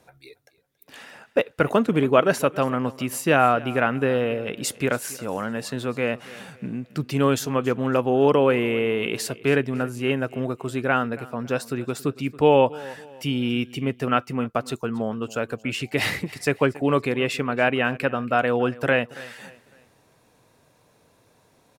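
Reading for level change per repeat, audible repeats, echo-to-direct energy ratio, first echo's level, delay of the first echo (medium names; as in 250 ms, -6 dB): -8.5 dB, 2, -19.5 dB, -20.0 dB, 278 ms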